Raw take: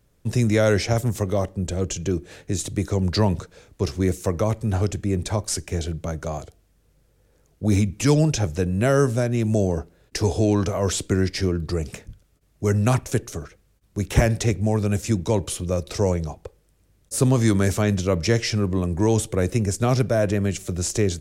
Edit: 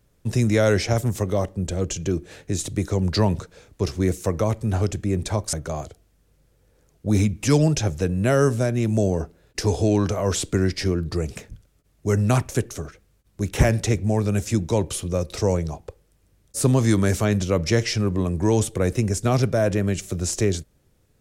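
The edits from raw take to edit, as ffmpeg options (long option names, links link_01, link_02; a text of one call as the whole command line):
ffmpeg -i in.wav -filter_complex "[0:a]asplit=2[link_01][link_02];[link_01]atrim=end=5.532[link_03];[link_02]atrim=start=6.098[link_04];[link_03][link_04]acrossfade=duration=0.004:curve1=hsin:curve2=hsin" out.wav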